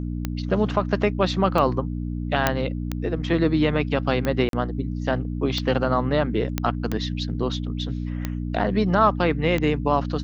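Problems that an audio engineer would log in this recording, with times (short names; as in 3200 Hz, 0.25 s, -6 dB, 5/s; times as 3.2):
hum 60 Hz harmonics 5 -28 dBFS
tick 45 rpm -12 dBFS
2.47 pop -3 dBFS
4.49–4.53 gap 42 ms
6.58 pop -8 dBFS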